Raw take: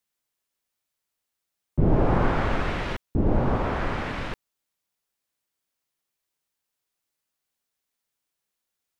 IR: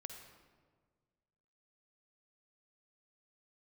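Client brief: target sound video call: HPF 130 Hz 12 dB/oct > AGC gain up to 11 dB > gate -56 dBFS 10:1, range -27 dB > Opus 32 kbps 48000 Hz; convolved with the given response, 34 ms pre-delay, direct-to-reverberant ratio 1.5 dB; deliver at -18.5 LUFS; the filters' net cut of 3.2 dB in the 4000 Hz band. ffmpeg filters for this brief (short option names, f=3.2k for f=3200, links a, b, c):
-filter_complex "[0:a]equalizer=f=4k:t=o:g=-4.5,asplit=2[a][b];[1:a]atrim=start_sample=2205,adelay=34[c];[b][c]afir=irnorm=-1:irlink=0,volume=2.5dB[d];[a][d]amix=inputs=2:normalize=0,highpass=130,dynaudnorm=m=11dB,agate=range=-27dB:threshold=-56dB:ratio=10,volume=7.5dB" -ar 48000 -c:a libopus -b:a 32k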